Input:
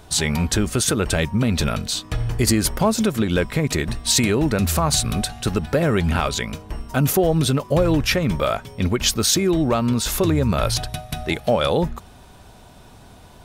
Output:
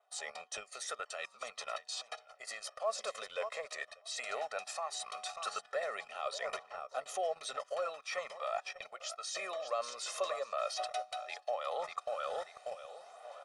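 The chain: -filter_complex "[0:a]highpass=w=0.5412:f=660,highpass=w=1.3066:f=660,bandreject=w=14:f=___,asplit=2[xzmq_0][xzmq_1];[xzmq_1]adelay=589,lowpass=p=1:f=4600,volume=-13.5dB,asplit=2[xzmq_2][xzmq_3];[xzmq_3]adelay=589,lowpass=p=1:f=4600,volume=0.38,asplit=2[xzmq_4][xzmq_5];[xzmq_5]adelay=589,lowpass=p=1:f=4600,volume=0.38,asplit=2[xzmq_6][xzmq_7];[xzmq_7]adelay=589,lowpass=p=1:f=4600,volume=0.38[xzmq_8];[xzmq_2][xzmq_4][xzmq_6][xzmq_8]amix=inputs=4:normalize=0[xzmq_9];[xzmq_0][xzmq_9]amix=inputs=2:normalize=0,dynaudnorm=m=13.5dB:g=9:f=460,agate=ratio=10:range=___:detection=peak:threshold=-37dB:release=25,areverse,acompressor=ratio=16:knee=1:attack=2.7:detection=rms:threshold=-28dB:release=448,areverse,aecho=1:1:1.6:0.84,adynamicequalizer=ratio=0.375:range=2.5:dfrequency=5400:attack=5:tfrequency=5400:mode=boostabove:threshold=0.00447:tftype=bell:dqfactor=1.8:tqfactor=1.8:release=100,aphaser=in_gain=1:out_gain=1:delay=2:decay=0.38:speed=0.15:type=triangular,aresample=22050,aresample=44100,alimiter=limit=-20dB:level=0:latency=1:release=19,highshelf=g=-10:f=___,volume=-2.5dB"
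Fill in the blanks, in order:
1600, -11dB, 2000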